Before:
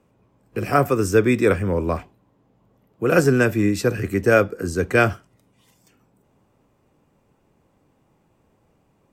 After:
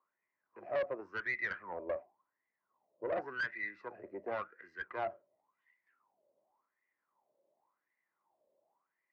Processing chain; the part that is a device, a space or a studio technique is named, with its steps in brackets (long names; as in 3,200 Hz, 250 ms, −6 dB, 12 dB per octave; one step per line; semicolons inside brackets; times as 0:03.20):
wah-wah guitar rig (LFO wah 0.91 Hz 550–2,000 Hz, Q 11; tube saturation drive 30 dB, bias 0.45; loudspeaker in its box 78–4,600 Hz, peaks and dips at 210 Hz +3 dB, 350 Hz +7 dB, 620 Hz +5 dB, 990 Hz +6 dB, 2,000 Hz +8 dB, 3,400 Hz −4 dB)
level −3.5 dB